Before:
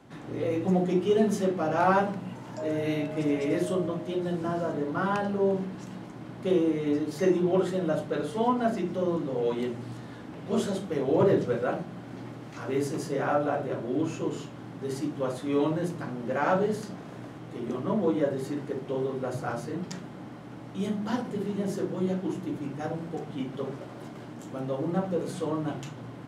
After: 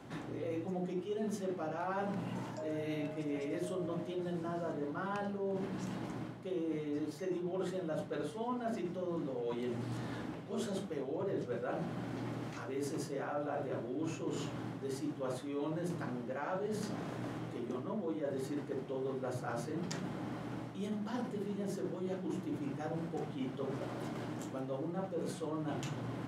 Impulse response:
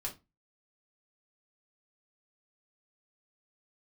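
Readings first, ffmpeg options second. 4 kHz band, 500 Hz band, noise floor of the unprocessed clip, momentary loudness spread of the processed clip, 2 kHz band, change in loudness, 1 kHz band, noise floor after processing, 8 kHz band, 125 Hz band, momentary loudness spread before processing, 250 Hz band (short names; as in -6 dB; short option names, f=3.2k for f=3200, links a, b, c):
-7.5 dB, -10.5 dB, -43 dBFS, 4 LU, -9.5 dB, -10.5 dB, -11.0 dB, -45 dBFS, -6.0 dB, -8.0 dB, 15 LU, -9.5 dB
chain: -af "bandreject=f=46.38:t=h:w=4,bandreject=f=92.76:t=h:w=4,bandreject=f=139.14:t=h:w=4,bandreject=f=185.52:t=h:w=4,bandreject=f=231.9:t=h:w=4,areverse,acompressor=threshold=-38dB:ratio=6,areverse,volume=2dB"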